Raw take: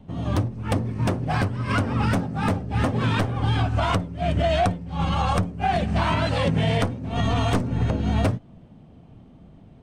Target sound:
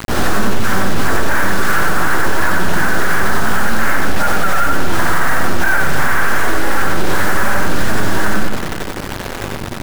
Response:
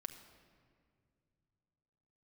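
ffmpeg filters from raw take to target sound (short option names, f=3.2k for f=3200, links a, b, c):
-filter_complex "[0:a]lowshelf=f=450:g=-4,areverse,acompressor=threshold=-32dB:ratio=6,areverse,flanger=delay=9.6:depth=3.1:regen=30:speed=0.25:shape=sinusoidal,aeval=exprs='abs(val(0))':c=same,aeval=exprs='val(0)+0.00112*(sin(2*PI*50*n/s)+sin(2*PI*2*50*n/s)/2+sin(2*PI*3*50*n/s)/3+sin(2*PI*4*50*n/s)/4+sin(2*PI*5*50*n/s)/5)':c=same,asoftclip=type=tanh:threshold=-32dB,lowpass=f=1.6k:t=q:w=4.1,acrusher=bits=7:mix=0:aa=0.000001,asplit=2[a][b];[1:a]atrim=start_sample=2205,adelay=91[c];[b][c]afir=irnorm=-1:irlink=0,volume=2dB[d];[a][d]amix=inputs=2:normalize=0,alimiter=level_in=28.5dB:limit=-1dB:release=50:level=0:latency=1,volume=-2dB"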